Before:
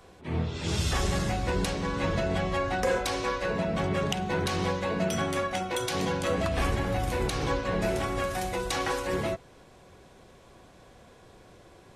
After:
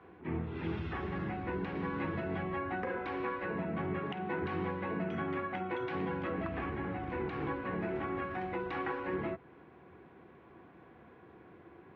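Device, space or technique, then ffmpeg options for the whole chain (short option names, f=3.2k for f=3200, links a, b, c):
bass amplifier: -filter_complex "[0:a]asettb=1/sr,asplit=3[a][b][c];[a]atrim=end=3.994[d];[b]atrim=start=3.99:end=4.42,asetpts=PTS-STARTPTS,afade=t=in:d=0.004:c=qsin,afade=t=out:st=0.426:d=0.004:c=qsin,highpass=f=230:p=1[e];[c]atrim=start=4.416[f];[d][e]acrossfade=d=0.004:c1=hsin:c2=qsin[g];[g][f]acrossfade=d=0.004:c1=qsin:c2=hsin,acompressor=threshold=-31dB:ratio=3,highpass=f=80:w=0.5412,highpass=f=80:w=1.3066,equalizer=f=110:t=q:w=4:g=-7,equalizer=f=330:t=q:w=4:g=6,equalizer=f=580:t=q:w=4:g=-9,lowpass=f=2.3k:w=0.5412,lowpass=f=2.3k:w=1.3066,asettb=1/sr,asplit=3[h][i][j];[h]atrim=end=1.754[k];[i]atrim=start=1.75:end=2.43,asetpts=PTS-STARTPTS,afade=t=in:d=0.004:c=qsin,afade=t=out:st=0.676:d=0.004:c=qsin,equalizer=f=5.4k:w=0.9:g=5[l];[j]atrim=start=2.426[m];[k][l]acrossfade=d=0.004:c1=hsin:c2=qsin[n];[n][m]acrossfade=d=0.004:c1=qsin:c2=hsin,volume=-1.5dB"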